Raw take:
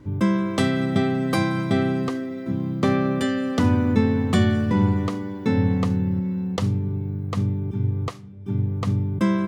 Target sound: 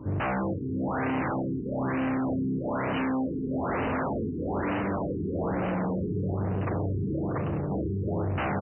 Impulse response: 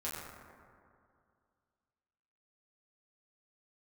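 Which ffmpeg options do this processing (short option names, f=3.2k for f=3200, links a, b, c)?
-filter_complex "[0:a]acrossover=split=3500[a][b];[a]aeval=exprs='0.0668*(abs(mod(val(0)/0.0668+3,4)-2)-1)':c=same[c];[c][b]amix=inputs=2:normalize=0,alimiter=level_in=1.5dB:limit=-24dB:level=0:latency=1:release=45,volume=-1.5dB,bandreject=f=60:t=h:w=6,bandreject=f=120:t=h:w=6,bandreject=f=180:t=h:w=6,bandreject=f=240:t=h:w=6,bandreject=f=300:t=h:w=6,bandreject=f=360:t=h:w=6,bandreject=f=420:t=h:w=6,bandreject=f=480:t=h:w=6,aecho=1:1:420|693|870.4|985.8|1061:0.631|0.398|0.251|0.158|0.1,asplit=2[d][e];[1:a]atrim=start_sample=2205,afade=t=out:st=0.15:d=0.01,atrim=end_sample=7056,asetrate=48510,aresample=44100[f];[e][f]afir=irnorm=-1:irlink=0,volume=-12dB[g];[d][g]amix=inputs=2:normalize=0,atempo=1.1,asoftclip=type=hard:threshold=-32dB,highpass=69,afftfilt=real='re*lt(b*sr/1024,430*pow(3100/430,0.5+0.5*sin(2*PI*1.1*pts/sr)))':imag='im*lt(b*sr/1024,430*pow(3100/430,0.5+0.5*sin(2*PI*1.1*pts/sr)))':win_size=1024:overlap=0.75,volume=6dB"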